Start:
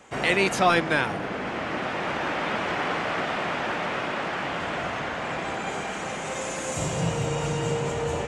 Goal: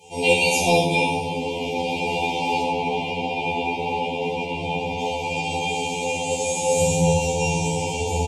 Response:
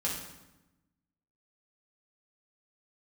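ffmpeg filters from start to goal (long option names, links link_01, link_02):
-filter_complex "[0:a]aemphasis=mode=production:type=cd,asettb=1/sr,asplit=3[link_01][link_02][link_03];[link_01]atrim=end=2.624[link_04];[link_02]atrim=start=2.62:end=4.99,asetpts=PTS-STARTPTS,afade=type=in:duration=0.004:curve=qsin,afade=type=out:start_time=2.366:duration=0.004:curve=qsin,acrossover=split=3200[link_05][link_06];[link_06]acompressor=threshold=-52dB:ratio=4:attack=1:release=60[link_07];[link_05][link_07]amix=inputs=2:normalize=0[link_08];[link_03]atrim=start=4.986[link_09];[link_04][link_08]acrossfade=duration=0.004:curve1=hsin:curve2=qsin[link_10];[link_10][link_09]acrossfade=duration=0.004:curve1=qsin:curve2=hsin,asuperstop=centerf=1500:order=20:qfactor=1.2,aecho=1:1:2.5:0.76[link_11];[1:a]atrim=start_sample=2205[link_12];[link_11][link_12]afir=irnorm=-1:irlink=0,afftfilt=real='re*2*eq(mod(b,4),0)':imag='im*2*eq(mod(b,4),0)':win_size=2048:overlap=0.75"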